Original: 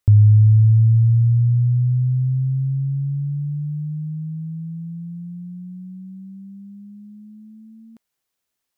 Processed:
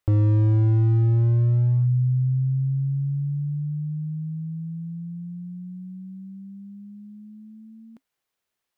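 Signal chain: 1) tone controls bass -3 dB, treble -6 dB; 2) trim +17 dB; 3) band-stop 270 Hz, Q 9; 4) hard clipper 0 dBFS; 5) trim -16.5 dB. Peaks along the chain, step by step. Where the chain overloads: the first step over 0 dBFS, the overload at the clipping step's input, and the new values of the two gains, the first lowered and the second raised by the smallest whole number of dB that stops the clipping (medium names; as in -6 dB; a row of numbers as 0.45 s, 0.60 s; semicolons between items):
-9.0 dBFS, +8.0 dBFS, +8.0 dBFS, 0.0 dBFS, -16.5 dBFS; step 2, 8.0 dB; step 2 +9 dB, step 5 -8.5 dB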